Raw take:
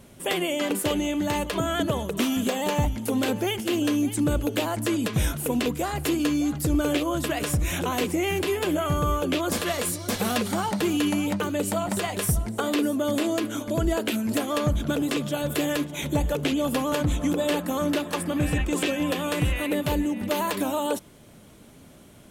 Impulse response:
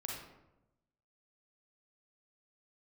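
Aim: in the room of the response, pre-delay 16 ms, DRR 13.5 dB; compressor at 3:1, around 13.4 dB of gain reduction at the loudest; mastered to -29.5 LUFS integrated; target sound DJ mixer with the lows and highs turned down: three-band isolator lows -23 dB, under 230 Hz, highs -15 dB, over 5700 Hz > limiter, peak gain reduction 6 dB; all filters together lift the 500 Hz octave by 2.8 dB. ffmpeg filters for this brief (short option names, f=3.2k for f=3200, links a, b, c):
-filter_complex "[0:a]equalizer=f=500:t=o:g=4,acompressor=threshold=-38dB:ratio=3,asplit=2[a][b];[1:a]atrim=start_sample=2205,adelay=16[c];[b][c]afir=irnorm=-1:irlink=0,volume=-13dB[d];[a][d]amix=inputs=2:normalize=0,acrossover=split=230 5700:gain=0.0708 1 0.178[e][f][g];[e][f][g]amix=inputs=3:normalize=0,volume=10.5dB,alimiter=limit=-19.5dB:level=0:latency=1"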